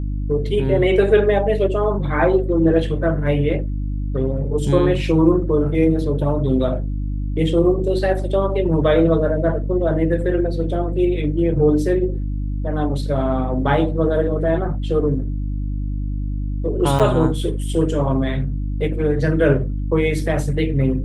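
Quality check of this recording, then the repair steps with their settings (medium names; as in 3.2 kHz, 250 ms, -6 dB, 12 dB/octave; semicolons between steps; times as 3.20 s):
hum 50 Hz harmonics 6 -23 dBFS
16.99–17.00 s: dropout 7.5 ms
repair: de-hum 50 Hz, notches 6; interpolate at 16.99 s, 7.5 ms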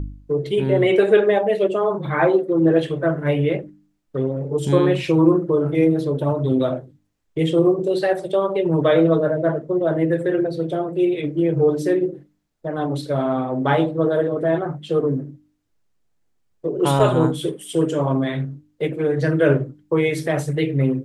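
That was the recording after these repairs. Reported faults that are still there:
nothing left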